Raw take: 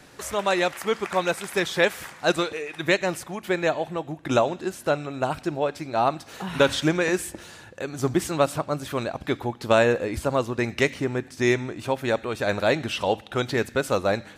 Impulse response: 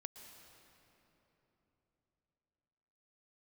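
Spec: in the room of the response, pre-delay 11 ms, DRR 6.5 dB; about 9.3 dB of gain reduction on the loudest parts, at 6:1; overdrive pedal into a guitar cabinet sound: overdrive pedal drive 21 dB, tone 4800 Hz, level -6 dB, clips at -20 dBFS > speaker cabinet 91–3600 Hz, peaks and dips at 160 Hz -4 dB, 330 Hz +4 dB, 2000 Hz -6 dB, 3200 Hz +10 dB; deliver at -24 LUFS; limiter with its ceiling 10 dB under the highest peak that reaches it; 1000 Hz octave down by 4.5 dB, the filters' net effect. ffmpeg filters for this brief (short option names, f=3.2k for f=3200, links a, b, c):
-filter_complex "[0:a]equalizer=f=1k:t=o:g=-6.5,acompressor=threshold=-26dB:ratio=6,alimiter=limit=-24dB:level=0:latency=1,asplit=2[a][b];[1:a]atrim=start_sample=2205,adelay=11[c];[b][c]afir=irnorm=-1:irlink=0,volume=-2dB[d];[a][d]amix=inputs=2:normalize=0,asplit=2[e][f];[f]highpass=f=720:p=1,volume=21dB,asoftclip=type=tanh:threshold=-20dB[g];[e][g]amix=inputs=2:normalize=0,lowpass=f=4.8k:p=1,volume=-6dB,highpass=91,equalizer=f=160:t=q:w=4:g=-4,equalizer=f=330:t=q:w=4:g=4,equalizer=f=2k:t=q:w=4:g=-6,equalizer=f=3.2k:t=q:w=4:g=10,lowpass=f=3.6k:w=0.5412,lowpass=f=3.6k:w=1.3066,volume=4dB"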